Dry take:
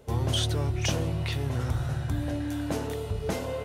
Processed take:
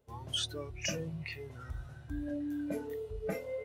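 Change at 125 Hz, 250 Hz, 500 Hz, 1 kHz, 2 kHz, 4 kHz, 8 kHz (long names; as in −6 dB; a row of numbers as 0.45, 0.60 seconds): −16.5, −6.5, −6.0, −12.5, −6.0, −5.0, −5.5 decibels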